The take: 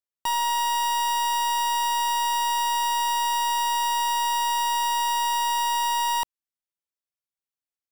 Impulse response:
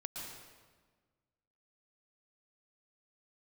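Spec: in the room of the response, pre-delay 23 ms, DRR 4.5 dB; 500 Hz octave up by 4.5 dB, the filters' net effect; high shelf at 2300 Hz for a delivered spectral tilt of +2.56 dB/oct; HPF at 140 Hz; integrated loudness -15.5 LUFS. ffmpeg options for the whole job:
-filter_complex "[0:a]highpass=140,equalizer=f=500:t=o:g=4.5,highshelf=f=2.3k:g=8,asplit=2[a][b];[1:a]atrim=start_sample=2205,adelay=23[c];[b][c]afir=irnorm=-1:irlink=0,volume=-3.5dB[d];[a][d]amix=inputs=2:normalize=0,volume=2.5dB"

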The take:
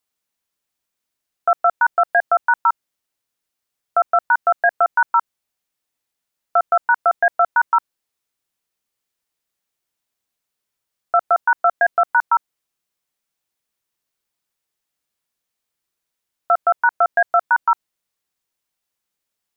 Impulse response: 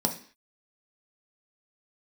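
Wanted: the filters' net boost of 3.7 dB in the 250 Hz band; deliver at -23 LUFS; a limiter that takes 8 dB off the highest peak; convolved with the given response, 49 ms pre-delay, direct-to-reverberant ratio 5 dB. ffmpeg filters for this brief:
-filter_complex "[0:a]equalizer=f=250:t=o:g=5.5,alimiter=limit=-14.5dB:level=0:latency=1,asplit=2[a][b];[1:a]atrim=start_sample=2205,adelay=49[c];[b][c]afir=irnorm=-1:irlink=0,volume=-13.5dB[d];[a][d]amix=inputs=2:normalize=0,volume=2dB"

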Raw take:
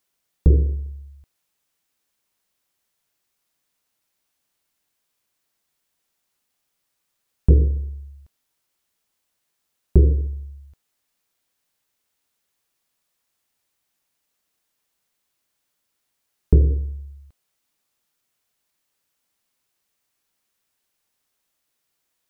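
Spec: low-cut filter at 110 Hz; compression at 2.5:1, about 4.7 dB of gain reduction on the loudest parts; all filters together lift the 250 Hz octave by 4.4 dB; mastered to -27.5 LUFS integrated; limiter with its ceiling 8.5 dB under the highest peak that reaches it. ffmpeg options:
-af "highpass=110,equalizer=f=250:t=o:g=8,acompressor=threshold=-19dB:ratio=2.5,volume=4.5dB,alimiter=limit=-12dB:level=0:latency=1"

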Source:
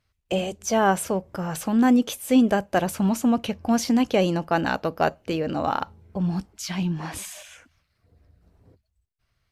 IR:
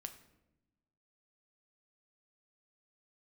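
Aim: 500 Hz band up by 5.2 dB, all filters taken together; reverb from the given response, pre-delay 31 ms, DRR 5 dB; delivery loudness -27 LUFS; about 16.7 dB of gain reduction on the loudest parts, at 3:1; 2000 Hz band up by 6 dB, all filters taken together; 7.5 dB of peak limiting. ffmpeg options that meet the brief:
-filter_complex "[0:a]equalizer=f=500:t=o:g=6,equalizer=f=2k:t=o:g=8,acompressor=threshold=-35dB:ratio=3,alimiter=level_in=1dB:limit=-24dB:level=0:latency=1,volume=-1dB,asplit=2[a][b];[1:a]atrim=start_sample=2205,adelay=31[c];[b][c]afir=irnorm=-1:irlink=0,volume=-1dB[d];[a][d]amix=inputs=2:normalize=0,volume=8dB"

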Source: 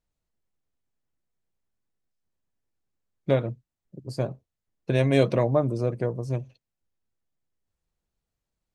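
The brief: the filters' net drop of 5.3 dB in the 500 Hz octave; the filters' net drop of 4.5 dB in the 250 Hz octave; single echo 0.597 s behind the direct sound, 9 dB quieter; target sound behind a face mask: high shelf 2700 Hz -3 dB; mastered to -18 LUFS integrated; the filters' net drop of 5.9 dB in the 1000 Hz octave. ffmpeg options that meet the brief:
-af "equalizer=f=250:t=o:g=-4.5,equalizer=f=500:t=o:g=-3.5,equalizer=f=1k:t=o:g=-6,highshelf=f=2.7k:g=-3,aecho=1:1:597:0.355,volume=11.5dB"

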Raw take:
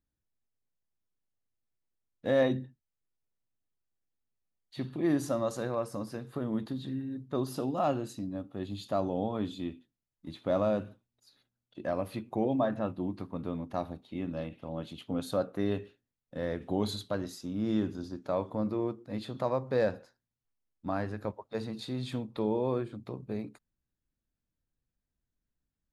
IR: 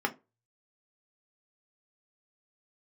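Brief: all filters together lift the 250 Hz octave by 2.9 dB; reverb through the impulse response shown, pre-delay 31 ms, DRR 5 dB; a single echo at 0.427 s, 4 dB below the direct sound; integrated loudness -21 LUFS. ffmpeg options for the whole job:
-filter_complex "[0:a]equalizer=f=250:t=o:g=3.5,aecho=1:1:427:0.631,asplit=2[a][b];[1:a]atrim=start_sample=2205,adelay=31[c];[b][c]afir=irnorm=-1:irlink=0,volume=-13.5dB[d];[a][d]amix=inputs=2:normalize=0,volume=9dB"

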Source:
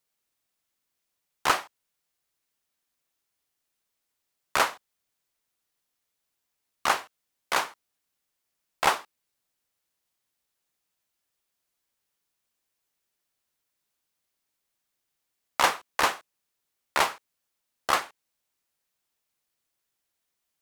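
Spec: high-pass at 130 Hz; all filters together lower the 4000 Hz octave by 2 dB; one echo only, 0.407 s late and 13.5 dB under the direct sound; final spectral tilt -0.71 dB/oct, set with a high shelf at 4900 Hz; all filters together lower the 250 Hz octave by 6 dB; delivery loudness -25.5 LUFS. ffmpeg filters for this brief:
-af "highpass=130,equalizer=f=250:t=o:g=-8.5,equalizer=f=4k:t=o:g=-5,highshelf=f=4.9k:g=5,aecho=1:1:407:0.211,volume=3dB"

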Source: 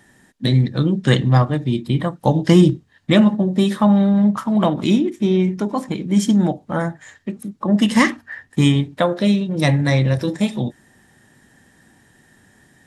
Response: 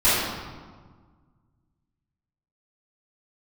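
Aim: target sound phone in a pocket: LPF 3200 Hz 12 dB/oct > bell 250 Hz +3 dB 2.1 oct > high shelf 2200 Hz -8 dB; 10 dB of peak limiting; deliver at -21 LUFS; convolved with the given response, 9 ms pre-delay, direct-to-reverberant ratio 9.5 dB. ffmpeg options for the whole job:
-filter_complex "[0:a]alimiter=limit=-11.5dB:level=0:latency=1,asplit=2[a][b];[1:a]atrim=start_sample=2205,adelay=9[c];[b][c]afir=irnorm=-1:irlink=0,volume=-29dB[d];[a][d]amix=inputs=2:normalize=0,lowpass=3.2k,equalizer=f=250:t=o:w=2.1:g=3,highshelf=f=2.2k:g=-8,volume=-3dB"

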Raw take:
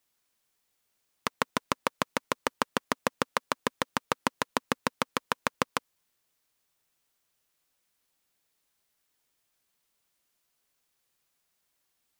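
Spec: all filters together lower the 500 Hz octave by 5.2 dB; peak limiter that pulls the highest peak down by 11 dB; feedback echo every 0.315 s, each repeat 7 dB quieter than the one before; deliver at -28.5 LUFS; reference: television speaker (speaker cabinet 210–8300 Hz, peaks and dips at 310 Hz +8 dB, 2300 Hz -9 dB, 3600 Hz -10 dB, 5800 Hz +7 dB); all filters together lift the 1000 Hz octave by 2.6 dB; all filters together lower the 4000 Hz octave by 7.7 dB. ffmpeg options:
-af "equalizer=f=500:t=o:g=-8.5,equalizer=f=1k:t=o:g=5.5,equalizer=f=4k:t=o:g=-7,alimiter=limit=-16.5dB:level=0:latency=1,highpass=f=210:w=0.5412,highpass=f=210:w=1.3066,equalizer=f=310:t=q:w=4:g=8,equalizer=f=2.3k:t=q:w=4:g=-9,equalizer=f=3.6k:t=q:w=4:g=-10,equalizer=f=5.8k:t=q:w=4:g=7,lowpass=f=8.3k:w=0.5412,lowpass=f=8.3k:w=1.3066,aecho=1:1:315|630|945|1260|1575:0.447|0.201|0.0905|0.0407|0.0183,volume=13dB"

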